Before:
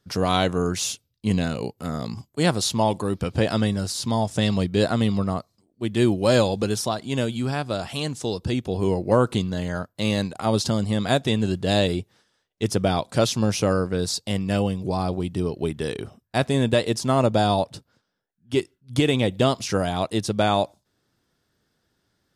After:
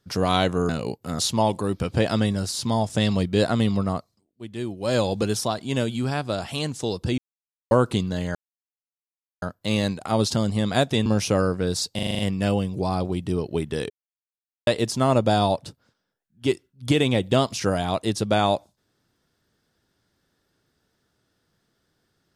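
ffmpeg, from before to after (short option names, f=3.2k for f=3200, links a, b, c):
-filter_complex "[0:a]asplit=17[a][b][c][d][e][f][g][h][i][j][k][l][m][n][o][p][q];[a]atrim=end=0.692[r];[b]atrim=start=1.448:end=1.952[s];[c]atrim=start=2.598:end=5.74,asetpts=PTS-STARTPTS,afade=t=out:st=2.782:d=0.36:silence=0.281838[t];[d]atrim=start=5.74:end=6.19,asetpts=PTS-STARTPTS,volume=-11dB[u];[e]atrim=start=6.19:end=8.59,asetpts=PTS-STARTPTS,afade=t=in:d=0.36:silence=0.281838,afade=t=out:st=2.396:d=0.004:c=hsin[v];[f]atrim=start=8.59:end=9.12,asetpts=PTS-STARTPTS,volume=0[w];[g]atrim=start=9.12:end=9.76,asetpts=PTS-STARTPTS,afade=t=in:d=0.004:c=hsin,afade=t=out:st=0.636:d=0.004:c=hsin,apad=pad_dur=1.07[x];[h]atrim=start=9.76:end=11.402,asetpts=PTS-STARTPTS,afade=t=in:d=0.004:c=hsin[y];[i]atrim=start=13.378:end=14.312[z];[j]atrim=start=14.268:end=14.312[aa];[k]atrim=start=14.268:end=14.312[ab];[l]atrim=start=14.268:end=14.312[ac];[m]atrim=start=14.268:end=14.312[ad];[n]atrim=start=14.268:end=14.312[ae];[o]atrim=start=14.268:end=15.98,asetpts=PTS-STARTPTS,afade=t=out:st=1.708:d=0.004:c=hsin[af];[p]atrim=start=15.98:end=16.75,asetpts=PTS-STARTPTS,volume=0[ag];[q]atrim=start=16.75,asetpts=PTS-STARTPTS,afade=t=in:d=0.004:c=hsin[ah];[r][s]acrossfade=d=0.004:c1=hsin:c2=hsin[ai];[t][u][v][w][x][y]concat=n=6:v=0:a=1[aj];[ai][aj]acrossfade=d=0.004:c1=hsin:c2=hsin[ak];[ak][z]acrossfade=d=0.004:c1=hsin:c2=hsin[al];[al][aa]acrossfade=d=0.004:c1=hsin:c2=hsin[am];[am][ab]acrossfade=d=0.004:c1=hsin:c2=hsin[an];[an][ac]acrossfade=d=0.004:c1=hsin:c2=hsin[ao];[ao][ad]acrossfade=d=0.004:c1=hsin:c2=hsin[ap];[ap][ae]acrossfade=d=0.004:c1=hsin:c2=hsin[aq];[af][ag][ah]concat=n=3:v=0:a=1[ar];[aq][ar]acrossfade=d=0.004:c1=hsin:c2=hsin"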